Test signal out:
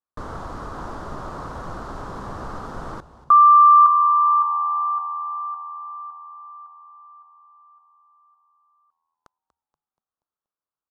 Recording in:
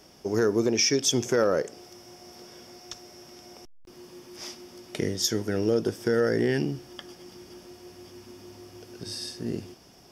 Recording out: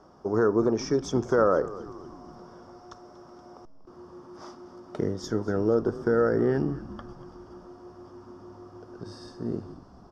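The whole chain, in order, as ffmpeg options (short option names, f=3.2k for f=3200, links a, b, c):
-filter_complex "[0:a]lowpass=5.8k,highshelf=f=1.7k:t=q:w=3:g=-11.5,asplit=6[a][b][c][d][e][f];[b]adelay=239,afreqshift=-82,volume=-16.5dB[g];[c]adelay=478,afreqshift=-164,volume=-22.3dB[h];[d]adelay=717,afreqshift=-246,volume=-28.2dB[i];[e]adelay=956,afreqshift=-328,volume=-34dB[j];[f]adelay=1195,afreqshift=-410,volume=-39.9dB[k];[a][g][h][i][j][k]amix=inputs=6:normalize=0"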